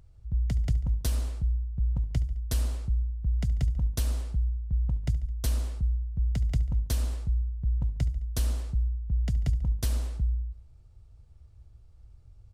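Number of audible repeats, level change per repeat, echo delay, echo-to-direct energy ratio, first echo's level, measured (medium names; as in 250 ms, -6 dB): 3, -5.0 dB, 71 ms, -17.0 dB, -18.5 dB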